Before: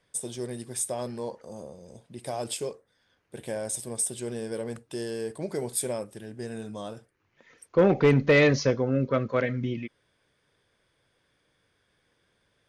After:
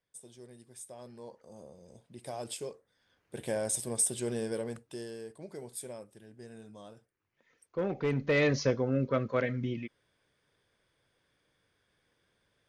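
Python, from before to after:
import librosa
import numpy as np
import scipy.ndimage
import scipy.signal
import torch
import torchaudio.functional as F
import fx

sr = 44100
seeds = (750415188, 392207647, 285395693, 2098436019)

y = fx.gain(x, sr, db=fx.line((0.83, -17.0), (1.82, -7.0), (2.68, -7.0), (3.42, 0.0), (4.43, 0.0), (5.34, -12.5), (7.94, -12.5), (8.66, -4.0)))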